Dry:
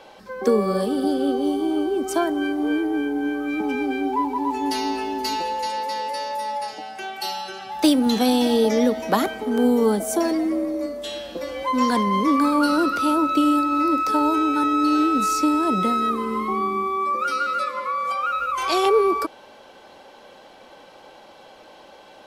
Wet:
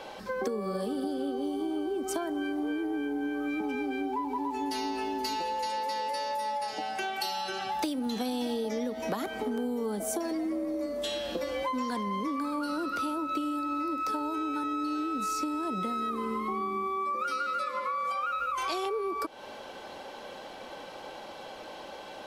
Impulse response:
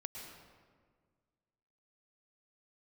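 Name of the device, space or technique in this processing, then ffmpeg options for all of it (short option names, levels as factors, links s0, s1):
serial compression, leveller first: -af "acompressor=threshold=0.0794:ratio=2,acompressor=threshold=0.0224:ratio=6,volume=1.41"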